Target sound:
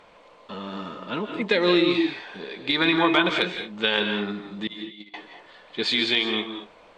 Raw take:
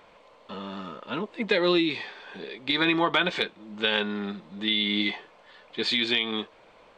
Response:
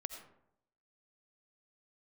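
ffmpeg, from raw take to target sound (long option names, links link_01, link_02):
-filter_complex "[0:a]asettb=1/sr,asplit=3[link_01][link_02][link_03];[link_01]atrim=end=4.674[link_04];[link_02]atrim=start=4.67:end=5.14,asetpts=PTS-STARTPTS,afade=type=in:duration=0.004:curve=qsin,afade=type=out:start_time=0.466:duration=0.004:curve=qsin,agate=range=-32dB:threshold=-21dB:ratio=16:detection=peak[link_05];[link_03]atrim=start=5.136[link_06];[link_04][link_05]acrossfade=duration=0.004:curve1=hsin:curve2=qsin[link_07];[link_07][link_06]acrossfade=duration=0.004:curve1=qsin:curve2=hsin[link_08];[1:a]atrim=start_sample=2205,afade=type=out:start_time=0.17:duration=0.01,atrim=end_sample=7938,asetrate=22491,aresample=44100[link_09];[link_08][link_09]afir=irnorm=-1:irlink=0,volume=1.5dB"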